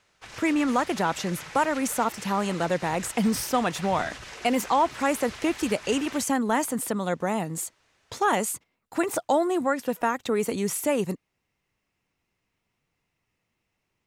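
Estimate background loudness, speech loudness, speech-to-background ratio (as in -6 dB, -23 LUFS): -40.5 LUFS, -26.5 LUFS, 14.0 dB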